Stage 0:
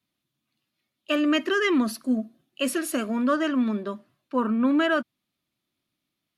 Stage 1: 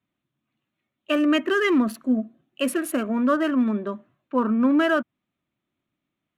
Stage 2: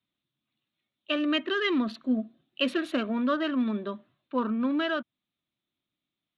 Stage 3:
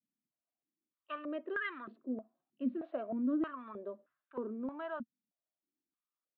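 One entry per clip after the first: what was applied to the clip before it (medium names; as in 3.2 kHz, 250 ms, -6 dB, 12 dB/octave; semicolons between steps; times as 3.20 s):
local Wiener filter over 9 samples; dynamic bell 5.1 kHz, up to -5 dB, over -45 dBFS, Q 0.9; trim +2.5 dB
gain riding 0.5 s; resonant low-pass 3.8 kHz, resonance Q 5.2; trim -5.5 dB
distance through air 210 m; step-sequenced band-pass 3.2 Hz 230–1500 Hz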